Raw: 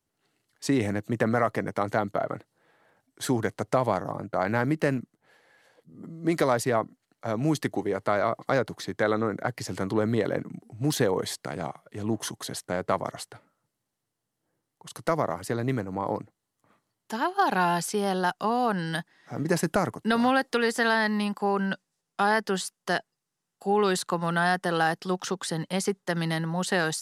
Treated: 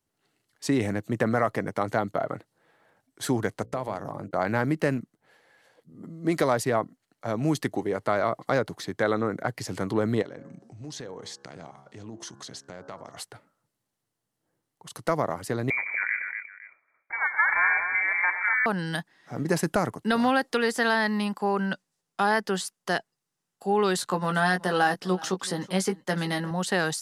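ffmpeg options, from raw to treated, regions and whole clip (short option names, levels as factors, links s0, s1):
-filter_complex "[0:a]asettb=1/sr,asplit=3[s0][s1][s2];[s0]atrim=end=3.624[s3];[s1]atrim=start=3.62:end=4.31,asetpts=PTS-STARTPTS,afade=t=in:d=0.004:c=qsin,afade=t=out:st=0.686:d=0.004:c=qsin,agate=range=0.126:threshold=0.00891:ratio=16:release=100:detection=peak,acompressor=threshold=0.0316:ratio=2:attack=3.2:release=140:knee=1:detection=peak,bandreject=f=60:t=h:w=6,bandreject=f=120:t=h:w=6,bandreject=f=180:t=h:w=6,bandreject=f=240:t=h:w=6,bandreject=f=300:t=h:w=6,bandreject=f=360:t=h:w=6,bandreject=f=420:t=h:w=6,bandreject=f=480:t=h:w=6,bandreject=f=540:t=h:w=6[s4];[s2]atrim=start=4.306[s5];[s3][s4]acrossfade=d=0.004:c1=hsin:c2=qsin[s6];[s6][s5]acrossfade=d=0.004:c1=qsin:c2=hsin,asettb=1/sr,asplit=3[s7][s8][s9];[s7]atrim=end=10.224[s10];[s8]atrim=start=10.22:end=13.17,asetpts=PTS-STARTPTS,afade=t=in:d=0.004:c=qsin,afade=t=out:st=2.946:d=0.004:c=qsin,bandreject=f=68.5:t=h:w=4,bandreject=f=137:t=h:w=4,bandreject=f=205.5:t=h:w=4,bandreject=f=274:t=h:w=4,bandreject=f=342.5:t=h:w=4,bandreject=f=411:t=h:w=4,bandreject=f=479.5:t=h:w=4,bandreject=f=548:t=h:w=4,bandreject=f=616.5:t=h:w=4,bandreject=f=685:t=h:w=4,bandreject=f=753.5:t=h:w=4,bandreject=f=822:t=h:w=4,bandreject=f=890.5:t=h:w=4,bandreject=f=959:t=h:w=4,bandreject=f=1027.5:t=h:w=4,bandreject=f=1096:t=h:w=4,bandreject=f=1164.5:t=h:w=4,bandreject=f=1233:t=h:w=4,bandreject=f=1301.5:t=h:w=4,bandreject=f=1370:t=h:w=4,bandreject=f=1438.5:t=h:w=4,bandreject=f=1507:t=h:w=4,bandreject=f=1575.5:t=h:w=4,bandreject=f=1644:t=h:w=4,bandreject=f=1712.5:t=h:w=4,acompressor=threshold=0.00708:ratio=2.5:attack=3.2:release=140:knee=1:detection=peak,lowpass=f=6200:t=q:w=1.9[s11];[s9]atrim=start=13.166[s12];[s10][s11]acrossfade=d=0.004:c1=hsin:c2=qsin[s13];[s13][s12]acrossfade=d=0.004:c1=qsin:c2=hsin,asettb=1/sr,asplit=3[s14][s15][s16];[s14]atrim=end=15.704[s17];[s15]atrim=start=15.7:end=18.66,asetpts=PTS-STARTPTS,afade=t=in:d=0.004:c=qsin,afade=t=out:st=2.956:d=0.004:c=qsin,lowpass=f=2100:t=q:w=0.5098,lowpass=f=2100:t=q:w=0.6013,lowpass=f=2100:t=q:w=0.9,lowpass=f=2100:t=q:w=2.563,afreqshift=-2500,aecho=1:1:91|123|239|510:0.178|0.266|0.473|0.126,atrim=end_sample=130536[s18];[s16]atrim=start=18.656[s19];[s17][s18]acrossfade=d=0.004:c1=hsin:c2=qsin[s20];[s20][s19]acrossfade=d=0.004:c1=qsin:c2=hsin,asettb=1/sr,asplit=3[s21][s22][s23];[s21]atrim=end=23.974[s24];[s22]atrim=start=23.97:end=26.51,asetpts=PTS-STARTPTS,afade=t=in:d=0.004:c=qsin,afade=t=out:st=2.536:d=0.004:c=qsin,asplit=2[s25][s26];[s26]adelay=16,volume=0.501[s27];[s25][s27]amix=inputs=2:normalize=0,atrim=end_sample=112014,aecho=1:1:376:0.0891,atrim=end_sample=112014[s28];[s23]atrim=start=26.506[s29];[s24][s28]acrossfade=d=0.004:c1=hsin:c2=qsin[s30];[s30][s29]acrossfade=d=0.004:c1=qsin:c2=hsin"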